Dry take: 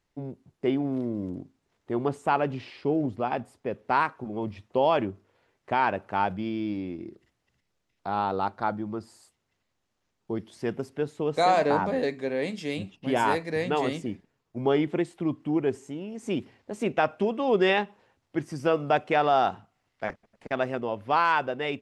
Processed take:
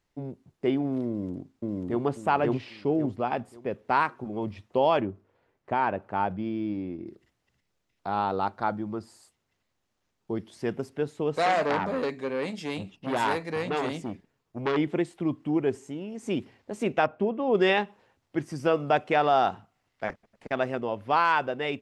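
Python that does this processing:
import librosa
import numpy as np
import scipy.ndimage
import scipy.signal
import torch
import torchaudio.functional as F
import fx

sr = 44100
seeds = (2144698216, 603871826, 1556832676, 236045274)

y = fx.echo_throw(x, sr, start_s=1.08, length_s=0.95, ms=540, feedback_pct=30, wet_db=0.0)
y = fx.high_shelf(y, sr, hz=2200.0, db=-10.5, at=(5.0, 7.07))
y = fx.transformer_sat(y, sr, knee_hz=1700.0, at=(11.34, 14.77))
y = fx.lowpass(y, sr, hz=1000.0, slope=6, at=(17.06, 17.55))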